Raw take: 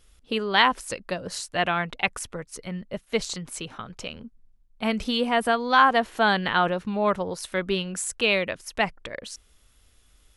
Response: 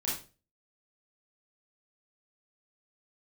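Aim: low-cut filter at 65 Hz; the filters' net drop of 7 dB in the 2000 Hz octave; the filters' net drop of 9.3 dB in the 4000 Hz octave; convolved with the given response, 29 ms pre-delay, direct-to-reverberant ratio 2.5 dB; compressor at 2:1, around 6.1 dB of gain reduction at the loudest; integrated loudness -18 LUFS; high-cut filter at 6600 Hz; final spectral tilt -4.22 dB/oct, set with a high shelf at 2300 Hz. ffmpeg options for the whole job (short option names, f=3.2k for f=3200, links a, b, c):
-filter_complex "[0:a]highpass=65,lowpass=6.6k,equalizer=f=2k:t=o:g=-5.5,highshelf=f=2.3k:g=-6,equalizer=f=4k:t=o:g=-4.5,acompressor=threshold=-26dB:ratio=2,asplit=2[a][b];[1:a]atrim=start_sample=2205,adelay=29[c];[b][c]afir=irnorm=-1:irlink=0,volume=-7.5dB[d];[a][d]amix=inputs=2:normalize=0,volume=11.5dB"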